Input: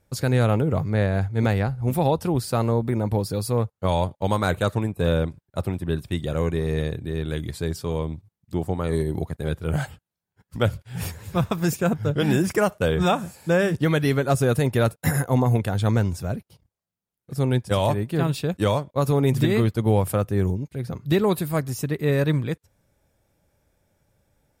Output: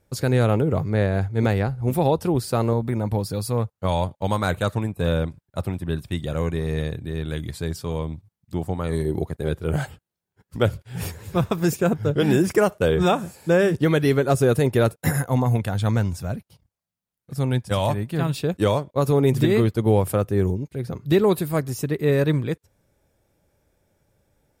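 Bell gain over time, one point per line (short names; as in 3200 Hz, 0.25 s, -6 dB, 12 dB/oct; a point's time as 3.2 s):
bell 390 Hz 0.79 oct
+3.5 dB
from 2.73 s -2.5 dB
from 9.05 s +5 dB
from 15.12 s -4 dB
from 18.36 s +4 dB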